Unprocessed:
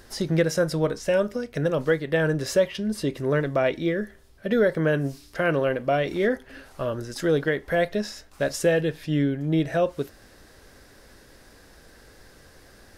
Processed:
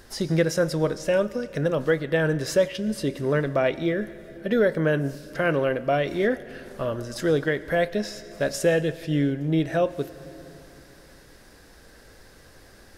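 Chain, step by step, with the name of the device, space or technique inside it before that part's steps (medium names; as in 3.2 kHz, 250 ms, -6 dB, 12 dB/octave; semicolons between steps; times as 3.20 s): compressed reverb return (on a send at -10.5 dB: reverberation RT60 2.1 s, pre-delay 82 ms + compression, threshold -27 dBFS, peak gain reduction 10.5 dB)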